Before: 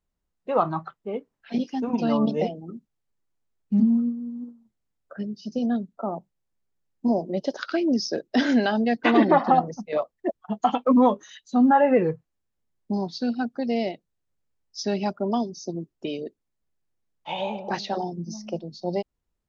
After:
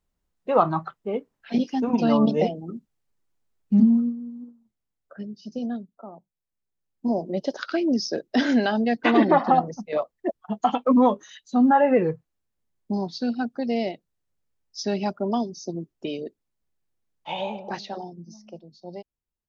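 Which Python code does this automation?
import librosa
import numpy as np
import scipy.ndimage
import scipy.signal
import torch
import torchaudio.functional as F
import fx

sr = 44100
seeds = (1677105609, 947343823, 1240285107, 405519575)

y = fx.gain(x, sr, db=fx.line((3.85, 3.0), (4.38, -4.0), (5.64, -4.0), (6.13, -13.0), (7.27, 0.0), (17.37, 0.0), (18.41, -11.0)))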